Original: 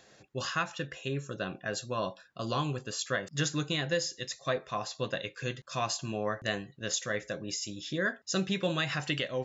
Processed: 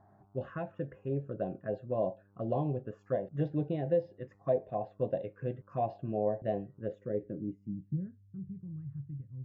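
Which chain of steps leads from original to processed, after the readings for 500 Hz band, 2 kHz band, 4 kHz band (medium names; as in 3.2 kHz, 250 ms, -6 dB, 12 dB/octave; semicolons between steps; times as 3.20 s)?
+1.5 dB, -21.0 dB, under -30 dB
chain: mains buzz 100 Hz, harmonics 15, -65 dBFS -5 dB/octave; low-pass sweep 700 Hz -> 100 Hz, 6.73–8.30 s; touch-sensitive phaser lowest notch 480 Hz, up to 1.3 kHz, full sweep at -27 dBFS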